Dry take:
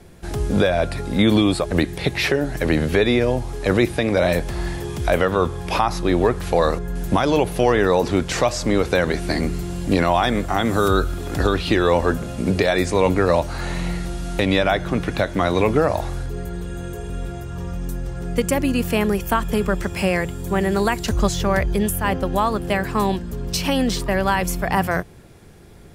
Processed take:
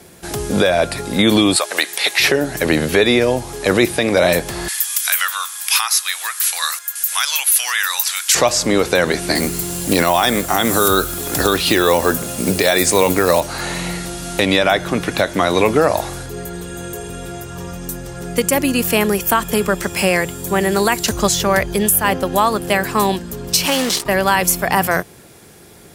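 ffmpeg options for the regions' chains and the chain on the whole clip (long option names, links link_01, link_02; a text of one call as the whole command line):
ffmpeg -i in.wav -filter_complex "[0:a]asettb=1/sr,asplit=3[link_01][link_02][link_03];[link_01]atrim=end=1.564[link_04];[link_02]atrim=start=1.56:end=2.2,asetpts=PTS-STARTPTS,afade=type=in:duration=0.004:curve=qsin,afade=type=out:start_time=0.636:duration=0.004:curve=qsin,highpass=570,tiltshelf=frequency=780:gain=-5[link_05];[link_03]atrim=start=2.196[link_06];[link_04][link_05]acrossfade=duration=0.004:curve1=hsin:curve2=qsin[link_07];[link_07][link_06]acrossfade=duration=0.004:curve1=qsin:curve2=hsin,asettb=1/sr,asplit=3[link_08][link_09][link_10];[link_08]atrim=end=4.684[link_11];[link_09]atrim=start=4.68:end=8.35,asetpts=PTS-STARTPTS,afade=type=in:duration=0.004:curve=qsin,afade=type=out:start_time=3.666:duration=0.004:curve=qsin,highpass=frequency=1300:width=0.5412,highpass=frequency=1300:width=1.3066,aemphasis=mode=production:type=bsi[link_12];[link_10]atrim=start=8.346[link_13];[link_11][link_12]acrossfade=duration=0.004:curve1=hsin:curve2=qsin[link_14];[link_14][link_13]acrossfade=duration=0.004:curve1=qsin:curve2=hsin,asettb=1/sr,asplit=3[link_15][link_16][link_17];[link_15]atrim=end=9.354[link_18];[link_16]atrim=start=9.35:end=13.41,asetpts=PTS-STARTPTS,afade=type=in:duration=0.004:curve=qsin,afade=type=out:start_time=4.056:duration=0.004:curve=qsin,acrusher=bits=8:mode=log:mix=0:aa=0.000001,highshelf=frequency=7800:gain=10.5[link_19];[link_17]atrim=start=13.406[link_20];[link_18][link_19]acrossfade=duration=0.004:curve1=hsin:curve2=qsin[link_21];[link_21][link_20]acrossfade=duration=0.004:curve1=qsin:curve2=hsin,asettb=1/sr,asplit=3[link_22][link_23][link_24];[link_22]atrim=end=23.664[link_25];[link_23]atrim=start=23.66:end=24.06,asetpts=PTS-STARTPTS,afade=type=in:duration=0.004:curve=qsin,afade=type=out:start_time=0.396:duration=0.004:curve=qsin,lowshelf=frequency=210:gain=-10,acrusher=bits=5:dc=4:mix=0:aa=0.000001,adynamicsmooth=sensitivity=7:basefreq=7400[link_26];[link_24]atrim=start=24.056[link_27];[link_25][link_26]acrossfade=duration=0.004:curve1=hsin:curve2=qsin[link_28];[link_28][link_27]acrossfade=duration=0.004:curve1=qsin:curve2=hsin,highpass=frequency=230:poles=1,aemphasis=mode=production:type=cd,alimiter=level_in=6.5dB:limit=-1dB:release=50:level=0:latency=1,volume=-1dB" out.wav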